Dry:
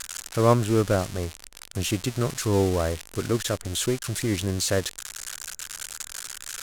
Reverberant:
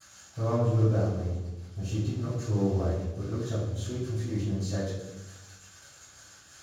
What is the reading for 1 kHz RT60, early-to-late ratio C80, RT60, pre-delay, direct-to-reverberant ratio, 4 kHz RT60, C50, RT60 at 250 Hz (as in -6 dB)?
1.0 s, 3.5 dB, 1.1 s, 3 ms, -19.0 dB, 0.80 s, 0.0 dB, 1.5 s